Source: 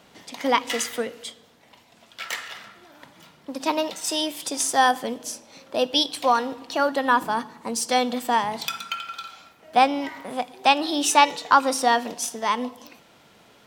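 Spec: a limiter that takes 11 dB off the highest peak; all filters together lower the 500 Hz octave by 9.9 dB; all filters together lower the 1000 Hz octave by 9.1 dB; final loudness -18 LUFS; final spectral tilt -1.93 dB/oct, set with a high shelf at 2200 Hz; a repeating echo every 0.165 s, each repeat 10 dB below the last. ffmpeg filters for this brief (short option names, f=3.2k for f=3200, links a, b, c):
-af "equalizer=f=500:t=o:g=-9,equalizer=f=1k:t=o:g=-7,highshelf=f=2.2k:g=-7,alimiter=limit=-20.5dB:level=0:latency=1,aecho=1:1:165|330|495|660:0.316|0.101|0.0324|0.0104,volume=14.5dB"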